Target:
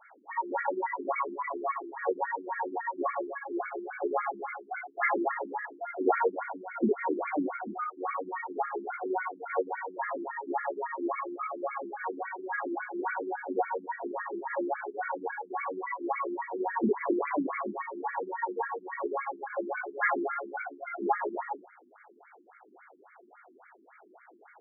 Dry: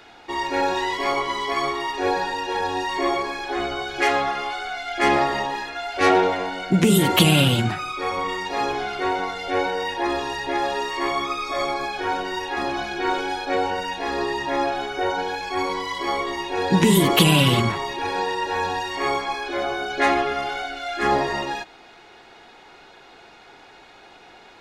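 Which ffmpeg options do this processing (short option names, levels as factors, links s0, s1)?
-af "flanger=delay=16:depth=7.6:speed=1.2,afftfilt=real='re*between(b*sr/1024,260*pow(1700/260,0.5+0.5*sin(2*PI*3.6*pts/sr))/1.41,260*pow(1700/260,0.5+0.5*sin(2*PI*3.6*pts/sr))*1.41)':imag='im*between(b*sr/1024,260*pow(1700/260,0.5+0.5*sin(2*PI*3.6*pts/sr))/1.41,260*pow(1700/260,0.5+0.5*sin(2*PI*3.6*pts/sr))*1.41)':win_size=1024:overlap=0.75"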